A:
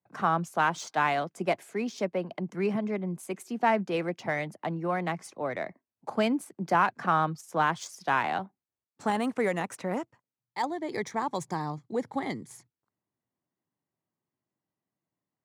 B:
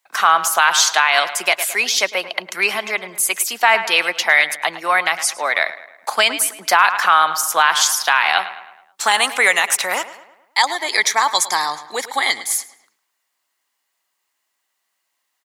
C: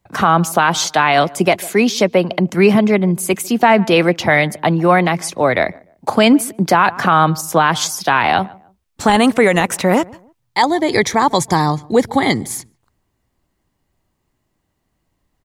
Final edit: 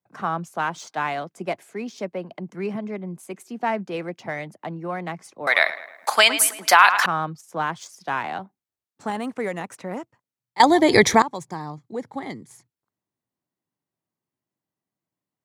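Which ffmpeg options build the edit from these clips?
-filter_complex "[0:a]asplit=3[a][b][c];[a]atrim=end=5.472[d];[1:a]atrim=start=5.468:end=7.062[e];[b]atrim=start=7.058:end=10.602[f];[2:a]atrim=start=10.598:end=11.222[g];[c]atrim=start=11.218[h];[d][e]acrossfade=d=0.004:c1=hsin:c2=hsin[i];[i][f]acrossfade=d=0.004:c1=hsin:c2=hsin[j];[j][g]acrossfade=d=0.004:c1=hsin:c2=hsin[k];[k][h]acrossfade=d=0.004:c1=hsin:c2=hsin"

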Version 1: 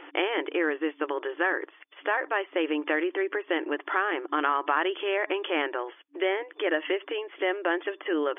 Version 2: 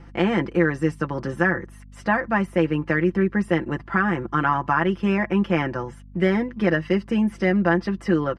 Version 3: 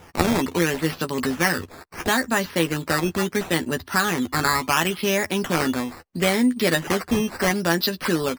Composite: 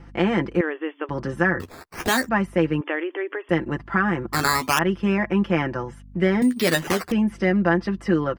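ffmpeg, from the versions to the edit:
-filter_complex "[0:a]asplit=2[a][b];[2:a]asplit=3[c][d][e];[1:a]asplit=6[f][g][h][i][j][k];[f]atrim=end=0.612[l];[a]atrim=start=0.608:end=1.092[m];[g]atrim=start=1.088:end=1.602[n];[c]atrim=start=1.598:end=2.292[o];[h]atrim=start=2.288:end=2.812[p];[b]atrim=start=2.808:end=3.492[q];[i]atrim=start=3.488:end=4.332[r];[d]atrim=start=4.328:end=4.792[s];[j]atrim=start=4.788:end=6.422[t];[e]atrim=start=6.418:end=7.122[u];[k]atrim=start=7.118[v];[l][m]acrossfade=d=0.004:c1=hsin:c2=hsin[w];[w][n]acrossfade=d=0.004:c1=hsin:c2=hsin[x];[x][o]acrossfade=d=0.004:c1=hsin:c2=hsin[y];[y][p]acrossfade=d=0.004:c1=hsin:c2=hsin[z];[z][q]acrossfade=d=0.004:c1=hsin:c2=hsin[aa];[aa][r]acrossfade=d=0.004:c1=hsin:c2=hsin[ab];[ab][s]acrossfade=d=0.004:c1=hsin:c2=hsin[ac];[ac][t]acrossfade=d=0.004:c1=hsin:c2=hsin[ad];[ad][u]acrossfade=d=0.004:c1=hsin:c2=hsin[ae];[ae][v]acrossfade=d=0.004:c1=hsin:c2=hsin"

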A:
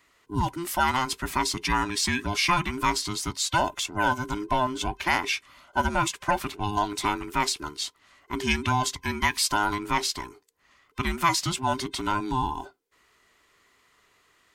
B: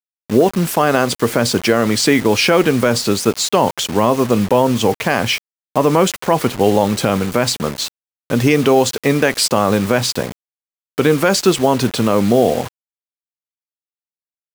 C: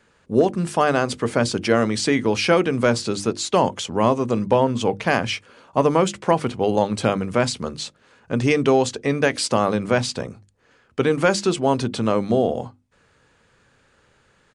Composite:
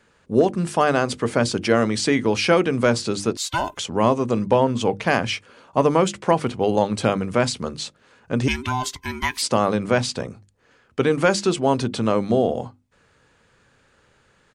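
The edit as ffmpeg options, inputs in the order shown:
-filter_complex "[0:a]asplit=2[a][b];[2:a]asplit=3[c][d][e];[c]atrim=end=3.372[f];[a]atrim=start=3.368:end=3.772[g];[d]atrim=start=3.768:end=8.482[h];[b]atrim=start=8.478:end=9.422[i];[e]atrim=start=9.418[j];[f][g]acrossfade=d=0.004:c1=hsin:c2=hsin[k];[k][h]acrossfade=d=0.004:c1=hsin:c2=hsin[l];[l][i]acrossfade=d=0.004:c1=hsin:c2=hsin[m];[m][j]acrossfade=d=0.004:c1=hsin:c2=hsin"

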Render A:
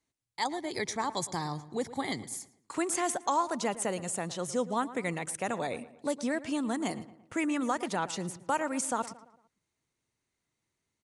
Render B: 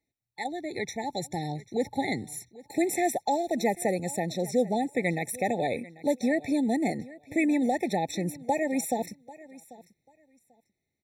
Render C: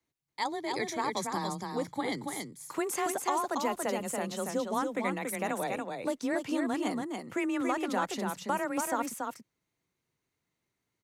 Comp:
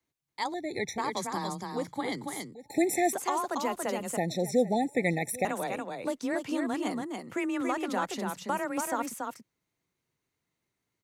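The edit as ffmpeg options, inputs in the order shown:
-filter_complex "[1:a]asplit=3[a][b][c];[2:a]asplit=4[d][e][f][g];[d]atrim=end=0.542[h];[a]atrim=start=0.538:end=0.982[i];[e]atrim=start=0.978:end=2.552[j];[b]atrim=start=2.548:end=3.132[k];[f]atrim=start=3.128:end=4.172[l];[c]atrim=start=4.168:end=5.452[m];[g]atrim=start=5.448[n];[h][i]acrossfade=d=0.004:c1=hsin:c2=hsin[o];[o][j]acrossfade=d=0.004:c1=hsin:c2=hsin[p];[p][k]acrossfade=d=0.004:c1=hsin:c2=hsin[q];[q][l]acrossfade=d=0.004:c1=hsin:c2=hsin[r];[r][m]acrossfade=d=0.004:c1=hsin:c2=hsin[s];[s][n]acrossfade=d=0.004:c1=hsin:c2=hsin"

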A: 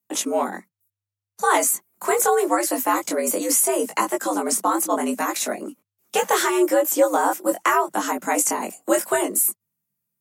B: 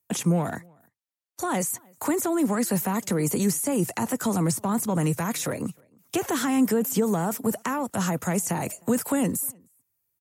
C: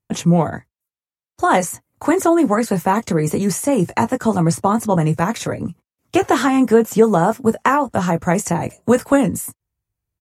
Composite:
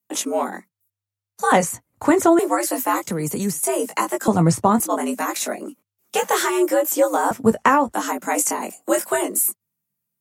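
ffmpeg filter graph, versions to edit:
-filter_complex "[2:a]asplit=3[a][b][c];[0:a]asplit=5[d][e][f][g][h];[d]atrim=end=1.522[i];[a]atrim=start=1.518:end=2.392[j];[e]atrim=start=2.388:end=3.072[k];[1:a]atrim=start=3.068:end=3.632[l];[f]atrim=start=3.628:end=4.282[m];[b]atrim=start=4.278:end=4.802[n];[g]atrim=start=4.798:end=7.312[o];[c]atrim=start=7.308:end=7.932[p];[h]atrim=start=7.928[q];[i][j]acrossfade=d=0.004:c1=hsin:c2=hsin[r];[r][k]acrossfade=d=0.004:c1=hsin:c2=hsin[s];[s][l]acrossfade=d=0.004:c1=hsin:c2=hsin[t];[t][m]acrossfade=d=0.004:c1=hsin:c2=hsin[u];[u][n]acrossfade=d=0.004:c1=hsin:c2=hsin[v];[v][o]acrossfade=d=0.004:c1=hsin:c2=hsin[w];[w][p]acrossfade=d=0.004:c1=hsin:c2=hsin[x];[x][q]acrossfade=d=0.004:c1=hsin:c2=hsin"

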